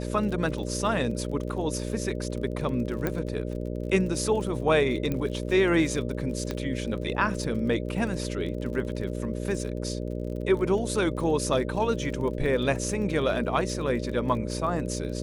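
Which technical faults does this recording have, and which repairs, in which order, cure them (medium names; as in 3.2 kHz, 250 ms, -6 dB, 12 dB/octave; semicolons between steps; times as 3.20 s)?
buzz 60 Hz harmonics 10 -32 dBFS
crackle 38 per s -36 dBFS
3.07 s: pop -13 dBFS
5.12 s: pop -17 dBFS
6.51 s: pop -17 dBFS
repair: de-click; de-hum 60 Hz, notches 10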